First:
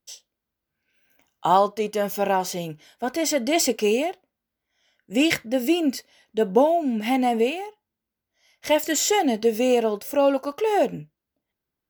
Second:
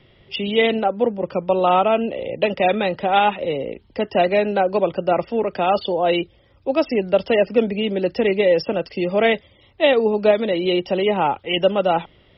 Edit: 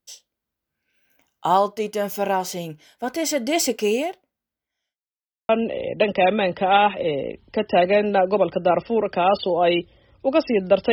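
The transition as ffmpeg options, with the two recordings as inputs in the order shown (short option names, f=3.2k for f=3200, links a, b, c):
-filter_complex "[0:a]apad=whole_dur=10.92,atrim=end=10.92,asplit=2[a][b];[a]atrim=end=4.97,asetpts=PTS-STARTPTS,afade=t=out:st=3.95:d=1.02:c=qsin[c];[b]atrim=start=4.97:end=5.49,asetpts=PTS-STARTPTS,volume=0[d];[1:a]atrim=start=1.91:end=7.34,asetpts=PTS-STARTPTS,afade=t=in:d=0.004:c=hsin[e];[c][d][e]concat=n=3:v=0:a=1"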